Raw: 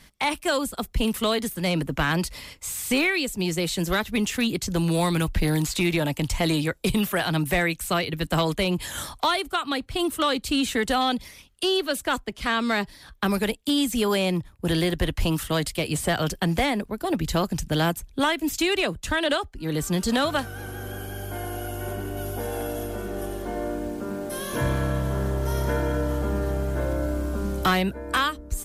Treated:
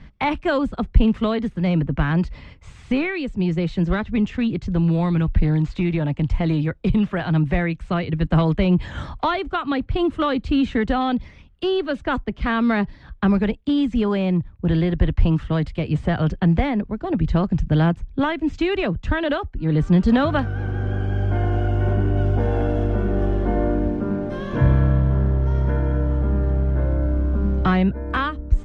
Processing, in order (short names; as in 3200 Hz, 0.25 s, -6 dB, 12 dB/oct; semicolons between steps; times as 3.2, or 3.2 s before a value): LPF 6900 Hz 24 dB/oct; tone controls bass +10 dB, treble -12 dB; vocal rider 2 s; high shelf 4100 Hz -11 dB